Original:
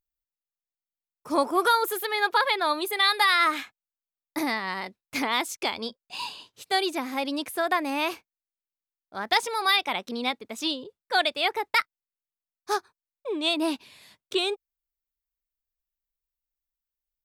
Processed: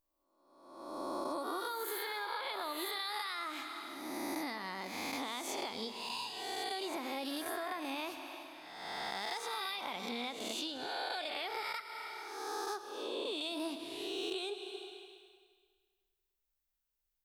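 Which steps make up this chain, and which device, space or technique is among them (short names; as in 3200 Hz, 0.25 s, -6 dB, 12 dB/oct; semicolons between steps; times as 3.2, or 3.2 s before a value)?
spectral swells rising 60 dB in 1.05 s; Schroeder reverb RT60 1.7 s, combs from 26 ms, DRR 12 dB; serial compression, leveller first (compressor 2:1, threshold -24 dBFS, peak gain reduction 6 dB; compressor 4:1, threshold -37 dBFS, peak gain reduction 15 dB); dynamic EQ 2000 Hz, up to -4 dB, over -52 dBFS, Q 0.85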